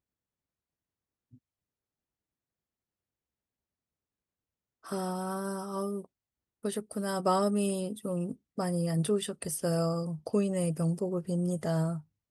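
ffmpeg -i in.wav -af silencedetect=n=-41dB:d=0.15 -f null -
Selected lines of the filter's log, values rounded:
silence_start: 0.00
silence_end: 4.86 | silence_duration: 4.86
silence_start: 6.05
silence_end: 6.64 | silence_duration: 0.60
silence_start: 8.33
silence_end: 8.58 | silence_duration: 0.25
silence_start: 12.00
silence_end: 12.30 | silence_duration: 0.30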